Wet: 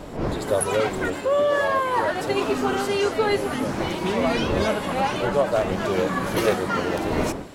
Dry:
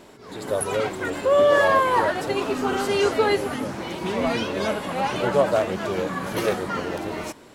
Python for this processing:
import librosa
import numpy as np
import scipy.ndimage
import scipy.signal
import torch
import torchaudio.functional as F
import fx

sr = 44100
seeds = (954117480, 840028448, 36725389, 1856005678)

y = fx.dmg_wind(x, sr, seeds[0], corner_hz=470.0, level_db=-36.0)
y = fx.rider(y, sr, range_db=4, speed_s=0.5)